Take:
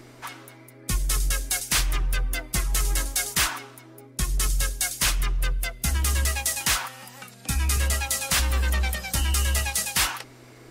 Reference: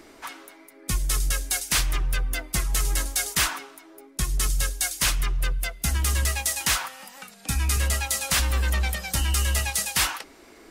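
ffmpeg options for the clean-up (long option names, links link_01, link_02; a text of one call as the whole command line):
ffmpeg -i in.wav -af "bandreject=frequency=123.9:width_type=h:width=4,bandreject=frequency=247.8:width_type=h:width=4,bandreject=frequency=371.7:width_type=h:width=4,bandreject=frequency=495.6:width_type=h:width=4,bandreject=frequency=619.5:width_type=h:width=4" out.wav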